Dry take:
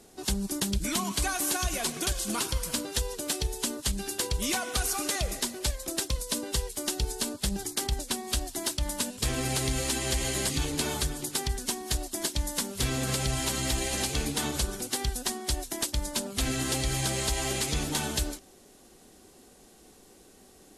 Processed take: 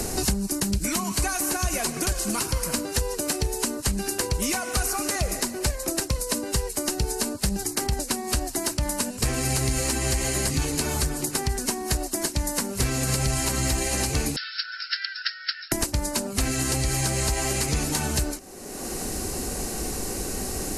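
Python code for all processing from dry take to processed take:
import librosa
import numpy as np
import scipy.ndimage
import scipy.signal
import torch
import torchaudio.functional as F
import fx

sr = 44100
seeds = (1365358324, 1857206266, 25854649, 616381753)

y = fx.chain(x, sr, fx.brickwall_bandpass(low_hz=1300.0, high_hz=5500.0),
    fx.peak_eq(hz=2300.0, db=-9.0, octaves=0.65), at=(14.36, 15.72))
y = fx.peak_eq(y, sr, hz=3400.0, db=-12.5, octaves=0.32)
y = fx.band_squash(y, sr, depth_pct=100)
y = y * librosa.db_to_amplitude(4.0)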